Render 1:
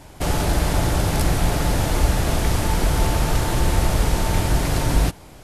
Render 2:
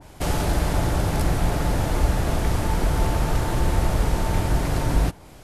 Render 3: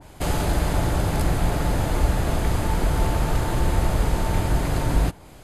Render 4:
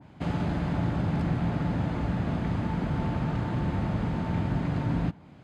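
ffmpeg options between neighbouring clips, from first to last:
ffmpeg -i in.wav -af "adynamicequalizer=threshold=0.00891:dfrequency=2100:dqfactor=0.7:tfrequency=2100:tqfactor=0.7:attack=5:release=100:ratio=0.375:range=2.5:mode=cutabove:tftype=highshelf,volume=-2dB" out.wav
ffmpeg -i in.wav -af "bandreject=frequency=5600:width=10" out.wav
ffmpeg -i in.wav -af "highpass=130,lowpass=3000,lowshelf=frequency=300:width_type=q:width=1.5:gain=7.5,volume=-7dB" out.wav

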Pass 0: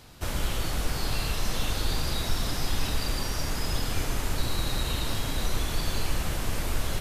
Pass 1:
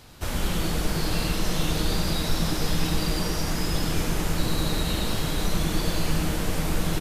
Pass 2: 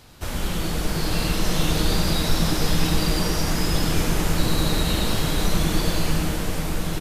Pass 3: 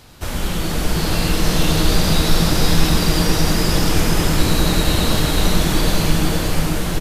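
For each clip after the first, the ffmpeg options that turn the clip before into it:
ffmpeg -i in.wav -filter_complex "[0:a]asplit=7[link_01][link_02][link_03][link_04][link_05][link_06][link_07];[link_02]adelay=97,afreqshift=150,volume=-8dB[link_08];[link_03]adelay=194,afreqshift=300,volume=-13.4dB[link_09];[link_04]adelay=291,afreqshift=450,volume=-18.7dB[link_10];[link_05]adelay=388,afreqshift=600,volume=-24.1dB[link_11];[link_06]adelay=485,afreqshift=750,volume=-29.4dB[link_12];[link_07]adelay=582,afreqshift=900,volume=-34.8dB[link_13];[link_01][link_08][link_09][link_10][link_11][link_12][link_13]amix=inputs=7:normalize=0,volume=1.5dB" out.wav
ffmpeg -i in.wav -af "dynaudnorm=framelen=320:gausssize=7:maxgain=4dB" out.wav
ffmpeg -i in.wav -af "aecho=1:1:479:0.631,volume=4dB" out.wav

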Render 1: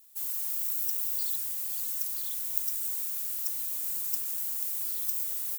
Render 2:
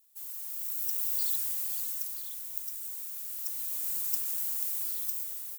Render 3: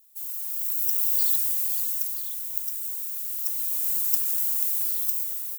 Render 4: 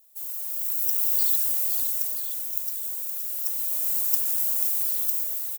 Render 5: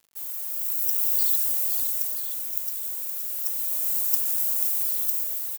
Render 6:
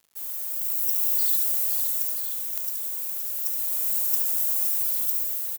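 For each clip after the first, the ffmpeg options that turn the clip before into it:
ffmpeg -i in.wav -af "equalizer=frequency=230:width_type=o:width=0.36:gain=-8,dynaudnorm=framelen=250:gausssize=7:maxgain=10dB,volume=-8dB" out.wav
ffmpeg -i in.wav -af "highshelf=frequency=9700:gain=4.5,volume=3.5dB" out.wav
ffmpeg -i in.wav -af "highpass=frequency=560:width_type=q:width=4.9,aecho=1:1:518:0.355" out.wav
ffmpeg -i in.wav -af "acrusher=bits=7:mix=0:aa=0.000001" out.wav
ffmpeg -i in.wav -filter_complex "[0:a]asoftclip=type=tanh:threshold=-12.5dB,asplit=2[link_01][link_02];[link_02]aecho=0:1:71:0.447[link_03];[link_01][link_03]amix=inputs=2:normalize=0" out.wav

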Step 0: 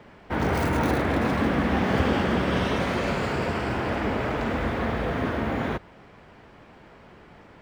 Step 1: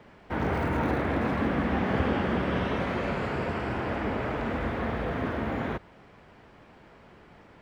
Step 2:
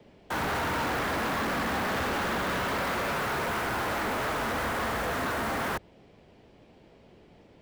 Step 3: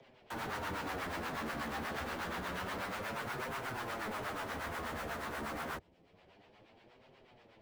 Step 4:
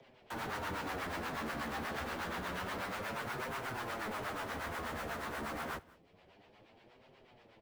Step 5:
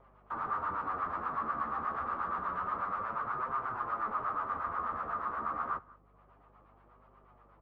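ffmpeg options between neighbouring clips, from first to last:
ffmpeg -i in.wav -filter_complex "[0:a]acrossover=split=3200[link_01][link_02];[link_02]acompressor=threshold=-52dB:ratio=4:attack=1:release=60[link_03];[link_01][link_03]amix=inputs=2:normalize=0,volume=-3.5dB" out.wav
ffmpeg -i in.wav -filter_complex "[0:a]equalizer=frequency=1300:width=0.54:gain=12,acrossover=split=120|610|2900[link_01][link_02][link_03][link_04];[link_03]acrusher=bits=5:mix=0:aa=0.000001[link_05];[link_01][link_02][link_05][link_04]amix=inputs=4:normalize=0,asoftclip=type=hard:threshold=-25dB,volume=-2.5dB" out.wav
ffmpeg -i in.wav -filter_complex "[0:a]acrossover=split=580|5200[link_01][link_02][link_03];[link_02]acompressor=mode=upward:threshold=-44dB:ratio=2.5[link_04];[link_01][link_04][link_03]amix=inputs=3:normalize=0,acrossover=split=670[link_05][link_06];[link_05]aeval=exprs='val(0)*(1-0.7/2+0.7/2*cos(2*PI*8.3*n/s))':channel_layout=same[link_07];[link_06]aeval=exprs='val(0)*(1-0.7/2-0.7/2*cos(2*PI*8.3*n/s))':channel_layout=same[link_08];[link_07][link_08]amix=inputs=2:normalize=0,flanger=delay=7.4:depth=6.6:regen=-4:speed=0.28:shape=triangular,volume=-4dB" out.wav
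ffmpeg -i in.wav -af "aecho=1:1:190:0.075" out.wav
ffmpeg -i in.wav -af "lowpass=frequency=1200:width_type=q:width=9.6,crystalizer=i=2:c=0,aeval=exprs='val(0)+0.00112*(sin(2*PI*50*n/s)+sin(2*PI*2*50*n/s)/2+sin(2*PI*3*50*n/s)/3+sin(2*PI*4*50*n/s)/4+sin(2*PI*5*50*n/s)/5)':channel_layout=same,volume=-5.5dB" out.wav

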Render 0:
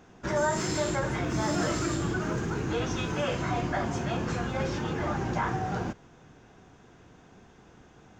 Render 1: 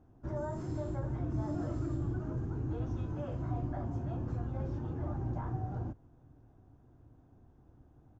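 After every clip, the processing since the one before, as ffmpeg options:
ffmpeg -i in.wav -af "firequalizer=gain_entry='entry(120,0);entry(180,-14);entry(280,-4);entry(430,-15);entry(610,-11);entry(2100,-28)':delay=0.05:min_phase=1" out.wav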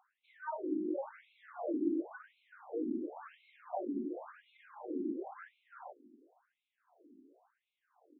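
ffmpeg -i in.wav -af "afftfilt=real='re*between(b*sr/1024,280*pow(3000/280,0.5+0.5*sin(2*PI*0.94*pts/sr))/1.41,280*pow(3000/280,0.5+0.5*sin(2*PI*0.94*pts/sr))*1.41)':imag='im*between(b*sr/1024,280*pow(3000/280,0.5+0.5*sin(2*PI*0.94*pts/sr))/1.41,280*pow(3000/280,0.5+0.5*sin(2*PI*0.94*pts/sr))*1.41)':win_size=1024:overlap=0.75,volume=7dB" out.wav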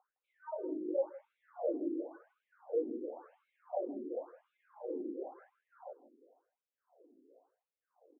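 ffmpeg -i in.wav -af "bandpass=frequency=510:width_type=q:width=4.9:csg=0,aecho=1:1:160:0.126,volume=9.5dB" out.wav

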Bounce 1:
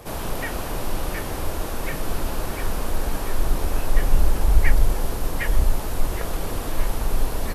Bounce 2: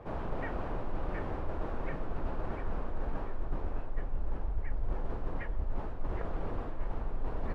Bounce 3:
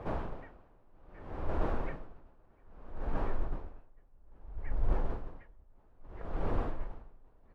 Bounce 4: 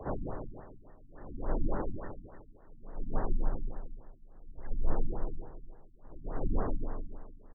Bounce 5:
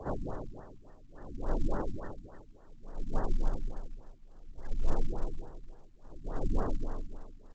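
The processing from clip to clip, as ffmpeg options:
ffmpeg -i in.wav -af "lowpass=1500,areverse,acompressor=threshold=-22dB:ratio=6,areverse,volume=-6dB" out.wav
ffmpeg -i in.wav -af "aeval=exprs='val(0)*pow(10,-33*(0.5-0.5*cos(2*PI*0.61*n/s))/20)':channel_layout=same,volume=4.5dB" out.wav
ffmpeg -i in.wav -af "aecho=1:1:152|304|456|608|760|912|1064:0.501|0.271|0.146|0.0789|0.0426|0.023|0.0124,afreqshift=-35,afftfilt=real='re*lt(b*sr/1024,290*pow(2100/290,0.5+0.5*sin(2*PI*3.5*pts/sr)))':imag='im*lt(b*sr/1024,290*pow(2100/290,0.5+0.5*sin(2*PI*3.5*pts/sr)))':win_size=1024:overlap=0.75,volume=1.5dB" out.wav
ffmpeg -i in.wav -ar 16000 -c:a pcm_mulaw out.wav

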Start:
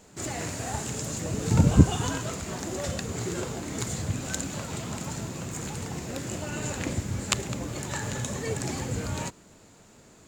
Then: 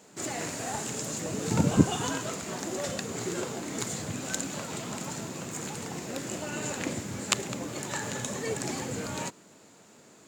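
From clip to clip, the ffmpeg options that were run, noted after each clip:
ffmpeg -i in.wav -af "highpass=180" out.wav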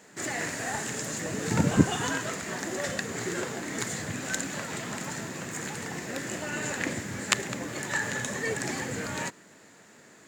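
ffmpeg -i in.wav -af "equalizer=frequency=1800:width=2.8:gain=10.5" out.wav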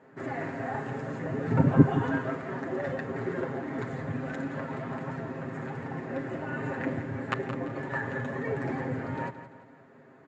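ffmpeg -i in.wav -filter_complex "[0:a]lowpass=1200,aecho=1:1:7.5:0.72,asplit=2[link_01][link_02];[link_02]aecho=0:1:171|342|513|684:0.251|0.103|0.0422|0.0173[link_03];[link_01][link_03]amix=inputs=2:normalize=0" out.wav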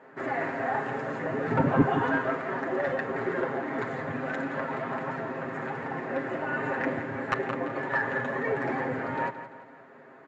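ffmpeg -i in.wav -filter_complex "[0:a]asplit=2[link_01][link_02];[link_02]highpass=frequency=720:poles=1,volume=20dB,asoftclip=type=tanh:threshold=-3.5dB[link_03];[link_01][link_03]amix=inputs=2:normalize=0,lowpass=frequency=2200:poles=1,volume=-6dB,volume=-5.5dB" out.wav

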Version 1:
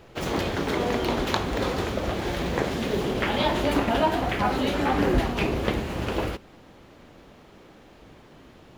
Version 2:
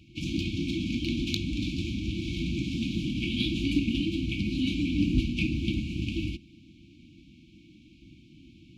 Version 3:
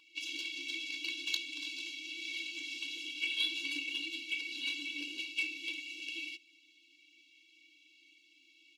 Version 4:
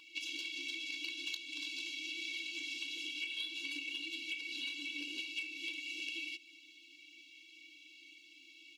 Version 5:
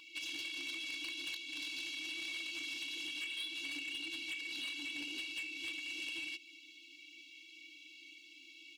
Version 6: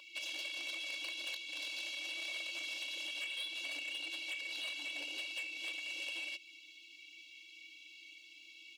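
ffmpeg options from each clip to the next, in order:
ffmpeg -i in.wav -af "highpass=47,afftfilt=real='re*(1-between(b*sr/4096,350,2200))':imag='im*(1-between(b*sr/4096,350,2200))':win_size=4096:overlap=0.75,adynamicsmooth=sensitivity=1.5:basefreq=5500" out.wav
ffmpeg -i in.wav -filter_complex "[0:a]firequalizer=gain_entry='entry(180,0);entry(310,-18);entry(1100,12);entry(3300,6)':delay=0.05:min_phase=1,asplit=2[link_01][link_02];[link_02]asoftclip=type=hard:threshold=-24dB,volume=-9dB[link_03];[link_01][link_03]amix=inputs=2:normalize=0,afftfilt=real='re*eq(mod(floor(b*sr/1024/290),2),1)':imag='im*eq(mod(floor(b*sr/1024/290),2),1)':win_size=1024:overlap=0.75,volume=-5.5dB" out.wav
ffmpeg -i in.wav -af "acompressor=threshold=-45dB:ratio=6,volume=6dB" out.wav
ffmpeg -i in.wav -af "asoftclip=type=tanh:threshold=-38dB,volume=2dB" out.wav
ffmpeg -i in.wav -af "highpass=frequency=580:width_type=q:width=6.4" out.wav

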